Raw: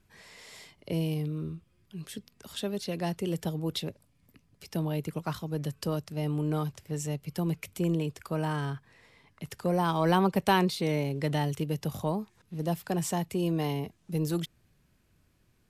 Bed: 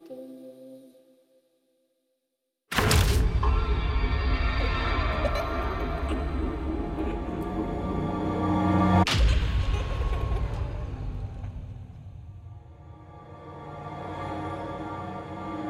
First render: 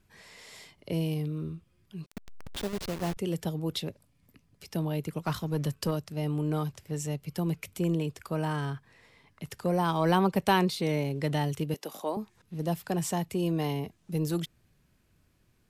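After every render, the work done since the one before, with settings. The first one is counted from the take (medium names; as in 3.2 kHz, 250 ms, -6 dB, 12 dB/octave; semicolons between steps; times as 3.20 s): 2.06–3.17 s: send-on-delta sampling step -32 dBFS; 5.25–5.91 s: waveshaping leveller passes 1; 11.74–12.17 s: high-pass 290 Hz 24 dB/octave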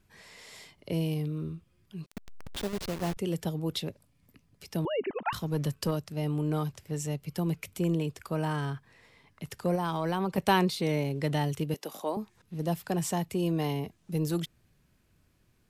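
4.85–5.33 s: formants replaced by sine waves; 9.75–10.38 s: compression, threshold -25 dBFS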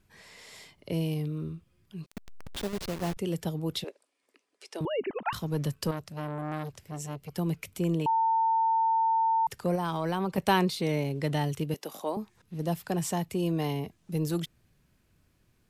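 3.84–4.81 s: elliptic band-pass 360–9500 Hz; 5.91–7.37 s: transformer saturation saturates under 970 Hz; 8.06–9.47 s: bleep 900 Hz -22 dBFS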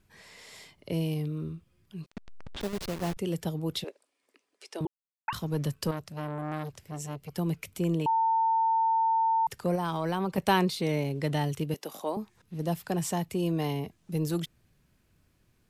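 2.10–2.61 s: distance through air 110 m; 4.87–5.28 s: mute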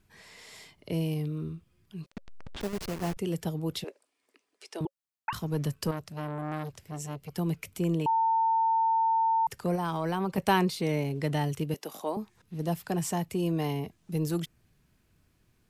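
band-stop 550 Hz, Q 15; dynamic bell 3.7 kHz, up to -4 dB, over -53 dBFS, Q 3.2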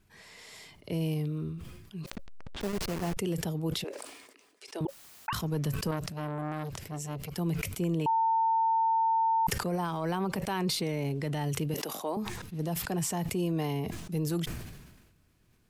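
peak limiter -23 dBFS, peak gain reduction 10.5 dB; decay stretcher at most 46 dB/s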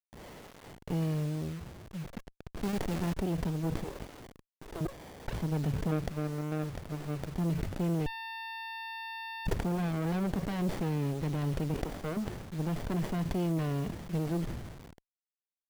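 bit crusher 8-bit; sliding maximum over 33 samples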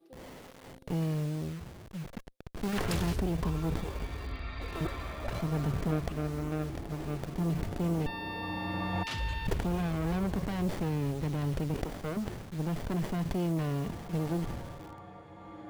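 add bed -13 dB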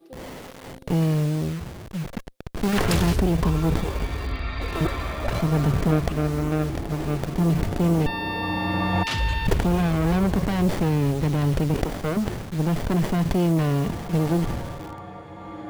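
trim +10 dB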